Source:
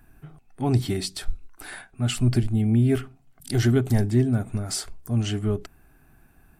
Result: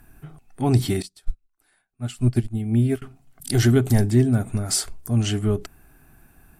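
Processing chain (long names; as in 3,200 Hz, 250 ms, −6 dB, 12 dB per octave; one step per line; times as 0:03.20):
Bessel low-pass filter 12,000 Hz, order 2
high-shelf EQ 8,800 Hz +11.5 dB
0:01.02–0:03.02: expander for the loud parts 2.5 to 1, over −36 dBFS
level +3 dB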